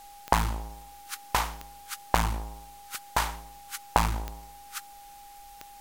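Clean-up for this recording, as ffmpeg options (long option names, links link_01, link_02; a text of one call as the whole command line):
ffmpeg -i in.wav -af "adeclick=threshold=4,bandreject=frequency=810:width=30,afwtdn=0.002" out.wav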